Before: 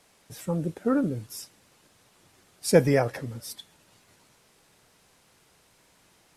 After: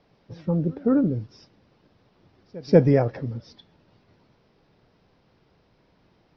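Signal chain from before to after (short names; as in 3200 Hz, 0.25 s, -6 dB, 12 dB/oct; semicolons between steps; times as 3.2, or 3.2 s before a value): steep low-pass 5500 Hz 72 dB/oct; tilt shelf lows +7 dB, about 850 Hz; reverse echo 0.188 s -23.5 dB; gain -1 dB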